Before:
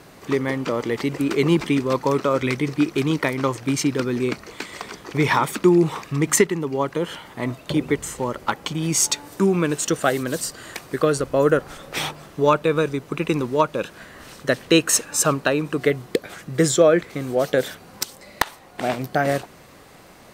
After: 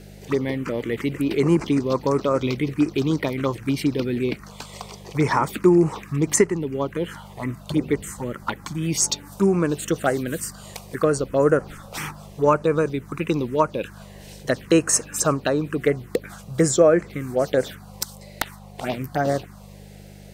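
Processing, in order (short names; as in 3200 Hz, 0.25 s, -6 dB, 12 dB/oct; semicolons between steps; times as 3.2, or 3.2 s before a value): envelope phaser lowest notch 170 Hz, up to 3600 Hz, full sweep at -15 dBFS; buzz 50 Hz, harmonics 4, -44 dBFS 0 dB/oct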